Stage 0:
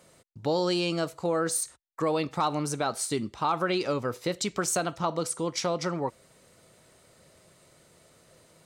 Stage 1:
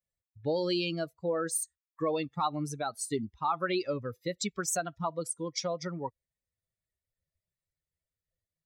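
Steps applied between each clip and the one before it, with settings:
spectral dynamics exaggerated over time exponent 2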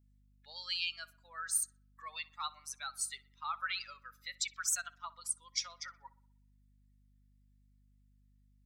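high-pass filter 1,400 Hz 24 dB per octave
mains hum 50 Hz, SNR 25 dB
feedback echo with a low-pass in the loop 62 ms, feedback 53%, low-pass 2,700 Hz, level −19 dB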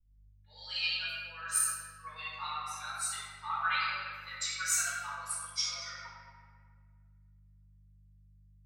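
convolution reverb RT60 2.4 s, pre-delay 3 ms, DRR −11.5 dB
multiband upward and downward expander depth 40%
level −8.5 dB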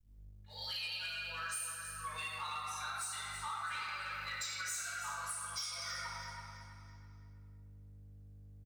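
downward compressor 6 to 1, threshold −44 dBFS, peak gain reduction 17.5 dB
leveller curve on the samples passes 2
on a send: repeating echo 329 ms, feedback 36%, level −9 dB
on the sum: level −1.5 dB

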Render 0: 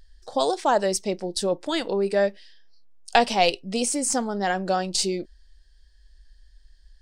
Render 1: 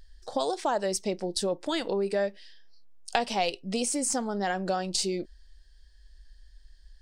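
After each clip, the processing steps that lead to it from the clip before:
downward compressor 2.5 to 1, threshold −27 dBFS, peak gain reduction 10 dB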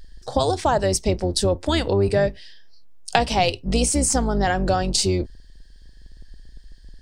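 sub-octave generator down 2 octaves, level +2 dB
level +7.5 dB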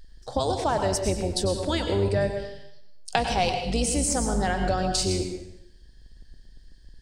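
dense smooth reverb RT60 0.79 s, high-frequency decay 0.95×, pre-delay 85 ms, DRR 5 dB
level −5.5 dB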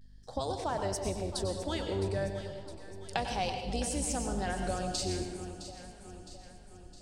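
pitch vibrato 0.35 Hz 34 cents
mains hum 50 Hz, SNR 23 dB
delay that swaps between a low-pass and a high-pass 331 ms, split 840 Hz, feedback 73%, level −10 dB
level −9 dB

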